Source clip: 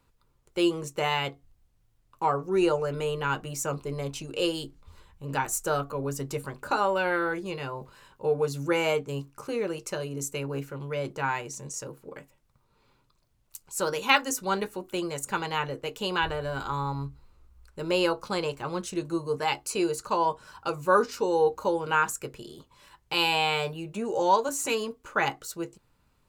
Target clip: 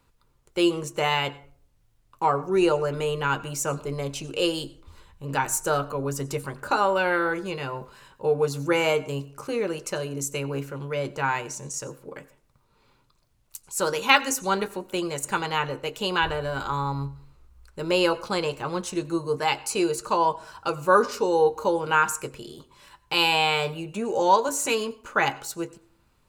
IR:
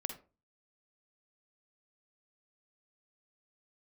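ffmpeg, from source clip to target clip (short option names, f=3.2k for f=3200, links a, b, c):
-filter_complex "[0:a]asplit=2[a][b];[1:a]atrim=start_sample=2205,asetrate=23373,aresample=44100,lowshelf=f=430:g=-8.5[c];[b][c]afir=irnorm=-1:irlink=0,volume=-13dB[d];[a][d]amix=inputs=2:normalize=0,volume=1.5dB"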